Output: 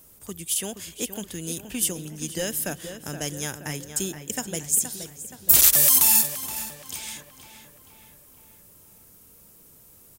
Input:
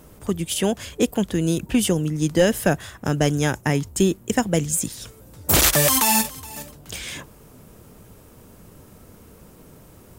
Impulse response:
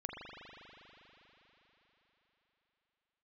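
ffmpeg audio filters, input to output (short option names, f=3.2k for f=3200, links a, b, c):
-filter_complex "[0:a]asplit=2[a][b];[b]adelay=473,lowpass=f=3.4k:p=1,volume=-9dB,asplit=2[c][d];[d]adelay=473,lowpass=f=3.4k:p=1,volume=0.54,asplit=2[e][f];[f]adelay=473,lowpass=f=3.4k:p=1,volume=0.54,asplit=2[g][h];[h]adelay=473,lowpass=f=3.4k:p=1,volume=0.54,asplit=2[i][j];[j]adelay=473,lowpass=f=3.4k:p=1,volume=0.54,asplit=2[k][l];[l]adelay=473,lowpass=f=3.4k:p=1,volume=0.54[m];[a][c][e][g][i][k][m]amix=inputs=7:normalize=0,asplit=2[n][o];[1:a]atrim=start_sample=2205[p];[o][p]afir=irnorm=-1:irlink=0,volume=-23dB[q];[n][q]amix=inputs=2:normalize=0,crystalizer=i=5:c=0,volume=-14.5dB"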